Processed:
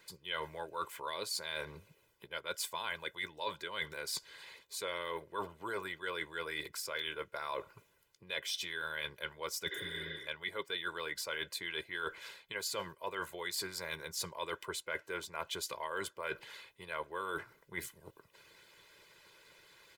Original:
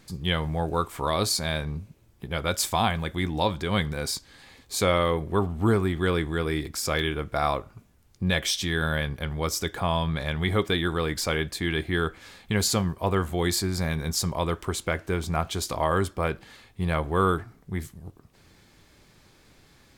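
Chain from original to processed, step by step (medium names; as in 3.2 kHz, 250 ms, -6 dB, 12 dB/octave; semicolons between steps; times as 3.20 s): pre-emphasis filter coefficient 0.9; spectral replace 9.73–10.25 s, 200–5300 Hz before; three-band isolator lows -21 dB, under 160 Hz, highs -18 dB, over 3.1 kHz; harmonic-percussive split harmonic -12 dB; comb 2 ms, depth 76%; reverse; compression 5:1, threshold -52 dBFS, peak gain reduction 16 dB; reverse; trim +15 dB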